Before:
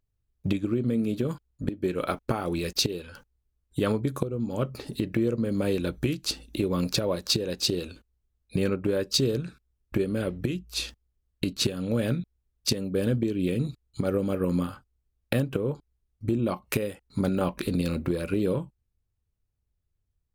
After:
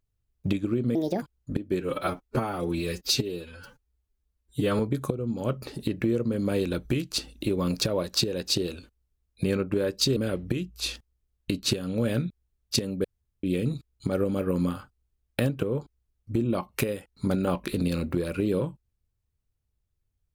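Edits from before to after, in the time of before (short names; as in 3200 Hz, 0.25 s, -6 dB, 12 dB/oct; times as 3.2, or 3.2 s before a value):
0.95–1.34 speed 145%
1.93–3.92 stretch 1.5×
9.29–10.1 cut
12.98–13.37 room tone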